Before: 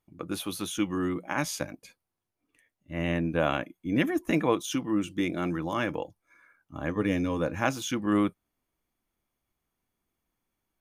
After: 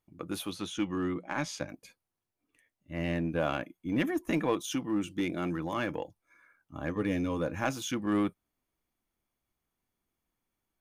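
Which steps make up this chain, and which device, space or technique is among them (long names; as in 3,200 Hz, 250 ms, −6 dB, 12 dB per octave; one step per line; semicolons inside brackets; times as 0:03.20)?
0:00.50–0:01.69: low-pass filter 6,000 Hz 12 dB per octave
parallel distortion (in parallel at −5 dB: hard clipping −24 dBFS, distortion −10 dB)
on the sum: level −6.5 dB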